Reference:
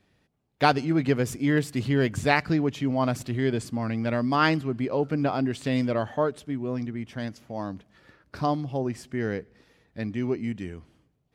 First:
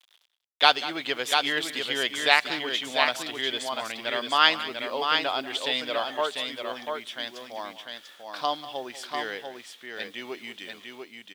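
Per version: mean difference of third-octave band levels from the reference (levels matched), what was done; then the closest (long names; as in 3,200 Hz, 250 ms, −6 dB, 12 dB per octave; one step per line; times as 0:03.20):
12.0 dB: bit-depth reduction 10 bits, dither none
high-pass filter 730 Hz 12 dB per octave
parametric band 3,400 Hz +15 dB 0.48 octaves
on a send: multi-tap delay 190/694 ms −15.5/−5 dB
on the sum: level +2 dB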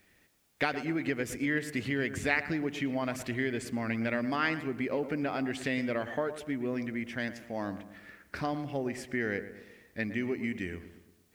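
6.0 dB: downward compressor 6 to 1, threshold −27 dBFS, peak gain reduction 12.5 dB
octave-band graphic EQ 125/1,000/2,000/4,000 Hz −8/−5/+10/−3 dB
bit-depth reduction 12 bits, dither triangular
on a send: feedback echo with a low-pass in the loop 115 ms, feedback 50%, low-pass 1,800 Hz, level −11.5 dB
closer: second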